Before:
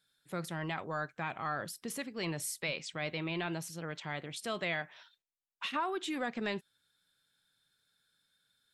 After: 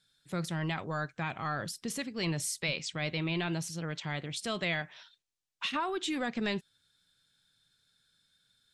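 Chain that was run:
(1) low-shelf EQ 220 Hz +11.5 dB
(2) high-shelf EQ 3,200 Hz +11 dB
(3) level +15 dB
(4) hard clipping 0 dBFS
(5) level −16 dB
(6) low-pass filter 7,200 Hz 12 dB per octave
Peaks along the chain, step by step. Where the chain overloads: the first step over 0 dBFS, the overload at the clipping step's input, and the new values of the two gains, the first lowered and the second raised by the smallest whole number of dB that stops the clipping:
−21.5, −18.0, −3.0, −3.0, −19.0, −19.5 dBFS
no step passes full scale

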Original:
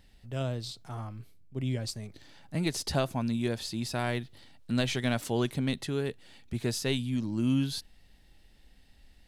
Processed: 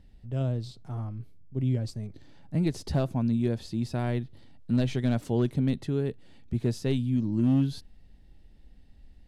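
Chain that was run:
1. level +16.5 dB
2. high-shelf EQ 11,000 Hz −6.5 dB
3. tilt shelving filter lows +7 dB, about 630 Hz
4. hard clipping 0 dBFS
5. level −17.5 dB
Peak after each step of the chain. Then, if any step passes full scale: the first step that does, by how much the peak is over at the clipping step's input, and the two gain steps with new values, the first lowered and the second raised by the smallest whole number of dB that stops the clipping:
+1.0, +1.0, +4.0, 0.0, −17.5 dBFS
step 1, 4.0 dB
step 1 +12.5 dB, step 5 −13.5 dB

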